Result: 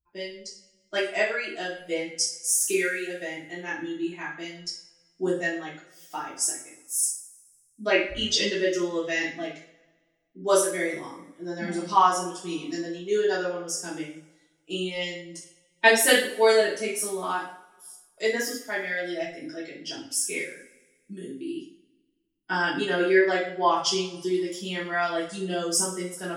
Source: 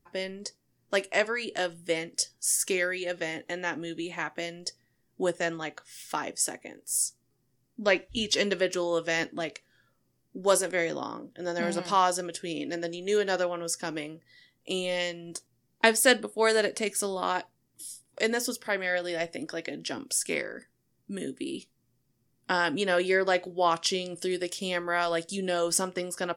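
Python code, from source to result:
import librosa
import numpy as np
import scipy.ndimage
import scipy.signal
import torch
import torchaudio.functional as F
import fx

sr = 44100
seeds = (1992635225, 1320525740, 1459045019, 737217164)

y = fx.bin_expand(x, sr, power=1.5)
y = fx.bass_treble(y, sr, bass_db=3, treble_db=13, at=(12.38, 12.79))
y = fx.rev_double_slope(y, sr, seeds[0], early_s=0.46, late_s=1.6, knee_db=-22, drr_db=-8.5)
y = y * 10.0 ** (-3.5 / 20.0)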